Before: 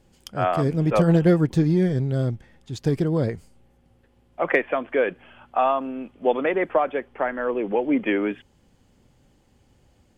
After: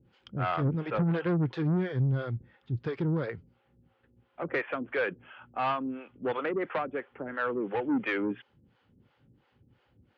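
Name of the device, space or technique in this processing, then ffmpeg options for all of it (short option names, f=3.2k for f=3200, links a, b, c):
guitar amplifier with harmonic tremolo: -filter_complex "[0:a]acrossover=split=450[a][b];[a]aeval=exprs='val(0)*(1-1/2+1/2*cos(2*PI*2.9*n/s))':c=same[c];[b]aeval=exprs='val(0)*(1-1/2-1/2*cos(2*PI*2.9*n/s))':c=same[d];[c][d]amix=inputs=2:normalize=0,asoftclip=type=tanh:threshold=-23dB,highpass=79,equalizer=f=120:t=q:w=4:g=6,equalizer=f=660:t=q:w=4:g=-6,equalizer=f=1.4k:t=q:w=4:g=6,lowpass=f=3.6k:w=0.5412,lowpass=f=3.6k:w=1.3066"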